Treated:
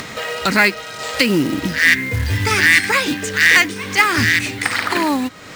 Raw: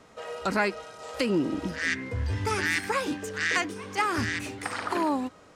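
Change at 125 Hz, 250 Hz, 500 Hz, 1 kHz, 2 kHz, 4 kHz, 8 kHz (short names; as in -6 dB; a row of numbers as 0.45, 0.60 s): +10.5, +9.5, +7.0, +8.5, +16.0, +16.0, +14.0 dB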